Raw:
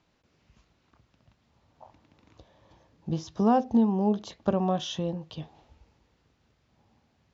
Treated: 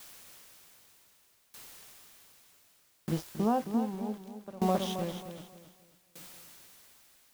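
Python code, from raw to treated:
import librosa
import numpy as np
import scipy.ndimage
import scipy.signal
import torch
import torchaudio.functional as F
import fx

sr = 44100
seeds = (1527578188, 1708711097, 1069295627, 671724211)

p1 = scipy.signal.sosfilt(scipy.signal.butter(2, 130.0, 'highpass', fs=sr, output='sos'), x)
p2 = np.where(np.abs(p1) >= 10.0 ** (-35.5 / 20.0), p1, 0.0)
p3 = fx.dmg_noise_colour(p2, sr, seeds[0], colour='white', level_db=-50.0)
p4 = p3 + fx.echo_feedback(p3, sr, ms=269, feedback_pct=47, wet_db=-6, dry=0)
y = fx.tremolo_decay(p4, sr, direction='decaying', hz=0.65, depth_db=21)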